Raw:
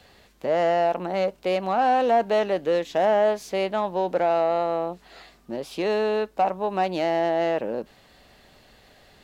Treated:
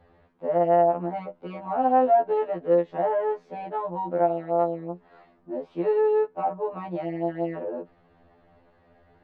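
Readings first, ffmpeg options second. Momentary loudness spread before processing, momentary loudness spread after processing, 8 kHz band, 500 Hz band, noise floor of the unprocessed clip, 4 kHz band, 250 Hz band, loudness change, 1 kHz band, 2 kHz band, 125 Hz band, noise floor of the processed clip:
12 LU, 15 LU, n/a, -1.5 dB, -56 dBFS, under -15 dB, -1.0 dB, -1.5 dB, -1.5 dB, -10.5 dB, +0.5 dB, -61 dBFS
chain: -af "lowpass=1.2k,afftfilt=real='re*2*eq(mod(b,4),0)':imag='im*2*eq(mod(b,4),0)':win_size=2048:overlap=0.75"

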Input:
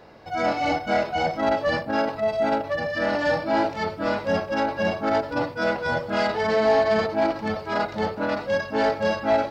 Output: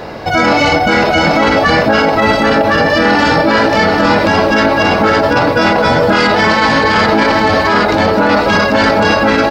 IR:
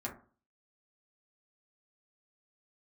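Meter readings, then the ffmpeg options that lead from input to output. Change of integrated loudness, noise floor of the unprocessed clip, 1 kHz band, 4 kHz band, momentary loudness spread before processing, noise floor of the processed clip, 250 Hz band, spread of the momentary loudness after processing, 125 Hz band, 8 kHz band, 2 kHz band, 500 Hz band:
+14.0 dB, -37 dBFS, +14.0 dB, +18.0 dB, 5 LU, -14 dBFS, +15.0 dB, 1 LU, +17.0 dB, n/a, +16.5 dB, +10.5 dB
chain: -af "afftfilt=real='re*lt(hypot(re,im),0.355)':imag='im*lt(hypot(re,im),0.355)':win_size=1024:overlap=0.75,aecho=1:1:792:0.473,alimiter=level_in=23.5dB:limit=-1dB:release=50:level=0:latency=1,volume=-1dB"

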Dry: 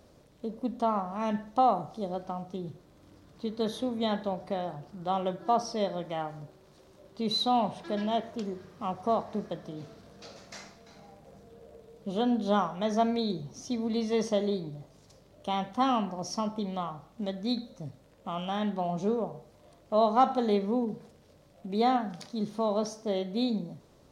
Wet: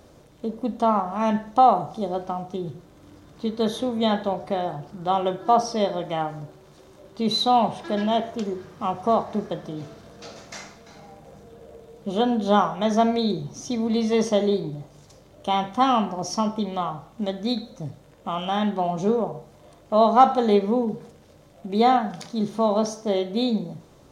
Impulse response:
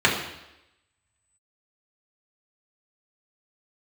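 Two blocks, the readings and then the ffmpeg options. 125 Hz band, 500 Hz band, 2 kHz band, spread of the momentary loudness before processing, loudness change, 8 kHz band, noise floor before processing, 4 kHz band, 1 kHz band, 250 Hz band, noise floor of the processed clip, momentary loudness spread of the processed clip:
+6.0 dB, +7.0 dB, +7.5 dB, 17 LU, +7.0 dB, +7.5 dB, -59 dBFS, +6.5 dB, +8.0 dB, +6.5 dB, -52 dBFS, 17 LU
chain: -filter_complex "[0:a]asplit=2[a][b];[1:a]atrim=start_sample=2205,asetrate=88200,aresample=44100[c];[b][c]afir=irnorm=-1:irlink=0,volume=-23dB[d];[a][d]amix=inputs=2:normalize=0,volume=6.5dB"

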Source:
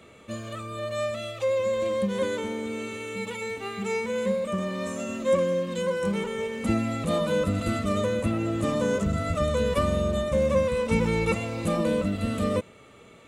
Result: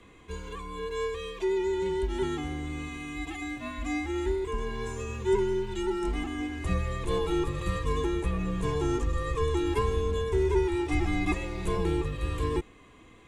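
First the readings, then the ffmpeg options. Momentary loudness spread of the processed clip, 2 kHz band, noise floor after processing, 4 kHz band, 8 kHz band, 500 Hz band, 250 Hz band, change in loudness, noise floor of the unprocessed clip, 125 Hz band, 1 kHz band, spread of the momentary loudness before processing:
9 LU, -3.5 dB, -54 dBFS, -3.5 dB, -5.5 dB, -4.5 dB, -3.5 dB, -3.5 dB, -51 dBFS, -2.0 dB, -2.0 dB, 8 LU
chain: -af "highshelf=f=7.5k:g=-5.5,afreqshift=-150,volume=-2.5dB"

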